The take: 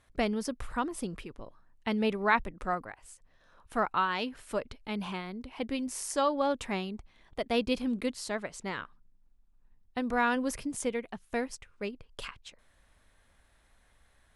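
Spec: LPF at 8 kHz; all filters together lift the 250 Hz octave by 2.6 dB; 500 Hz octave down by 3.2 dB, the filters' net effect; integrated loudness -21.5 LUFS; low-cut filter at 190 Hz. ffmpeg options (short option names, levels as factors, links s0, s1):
-af "highpass=190,lowpass=8000,equalizer=f=250:t=o:g=5.5,equalizer=f=500:t=o:g=-5,volume=3.76"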